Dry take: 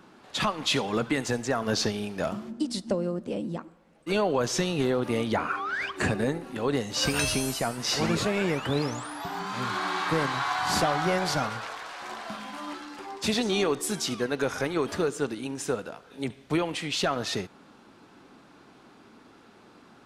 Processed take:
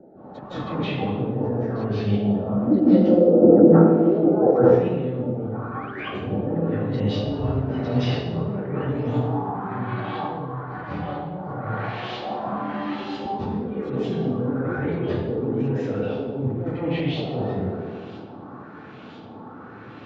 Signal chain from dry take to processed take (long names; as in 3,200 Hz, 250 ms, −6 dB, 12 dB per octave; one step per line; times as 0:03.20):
auto-filter low-pass saw up 1 Hz 620–3,700 Hz
brickwall limiter −19 dBFS, peak gain reduction 8 dB
treble cut that deepens with the level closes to 1,700 Hz, closed at −27.5 dBFS
delay with a band-pass on its return 98 ms, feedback 69%, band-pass 430 Hz, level −10 dB
compressor whose output falls as the input rises −32 dBFS, ratio −0.5
dynamic equaliser 1,400 Hz, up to −8 dB, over −48 dBFS, Q 1
0:02.67–0:04.51: hollow resonant body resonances 350/490/700/1,300 Hz, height 15 dB, ringing for 20 ms
convolution reverb RT60 1.1 s, pre-delay 152 ms, DRR −10.5 dB
level −11 dB